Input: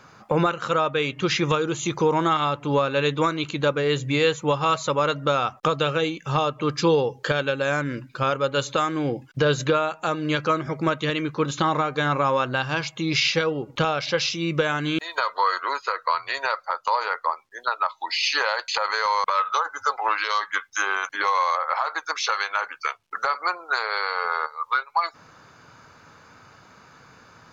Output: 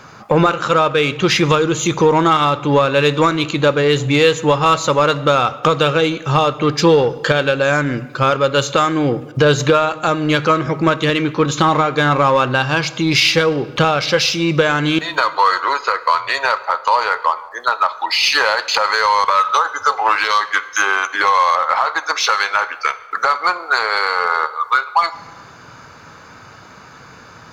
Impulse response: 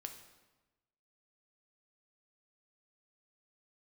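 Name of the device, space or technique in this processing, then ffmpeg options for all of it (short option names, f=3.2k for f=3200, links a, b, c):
saturated reverb return: -filter_complex "[0:a]asplit=2[a][b];[1:a]atrim=start_sample=2205[c];[b][c]afir=irnorm=-1:irlink=0,asoftclip=type=tanh:threshold=-28dB,volume=0dB[d];[a][d]amix=inputs=2:normalize=0,volume=6dB"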